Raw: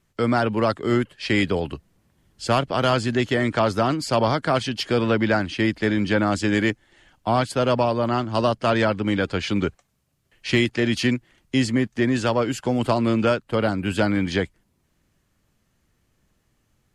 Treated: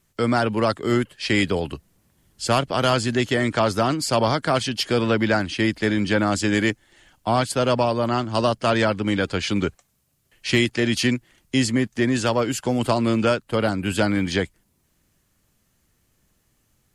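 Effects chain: high shelf 6200 Hz +10.5 dB

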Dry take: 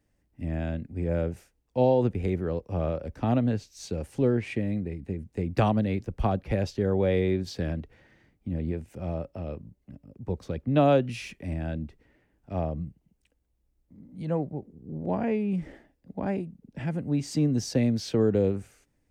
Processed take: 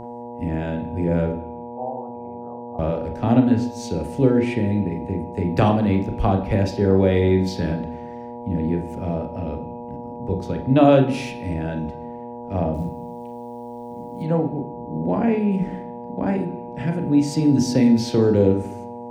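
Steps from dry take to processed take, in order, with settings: 1.32–2.79 vocal tract filter a; buzz 120 Hz, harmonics 8, -41 dBFS -1 dB/oct; 12.74–14.23 short-mantissa float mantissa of 4-bit; on a send: reverb RT60 0.70 s, pre-delay 29 ms, DRR 5 dB; on the sum: gain +5 dB

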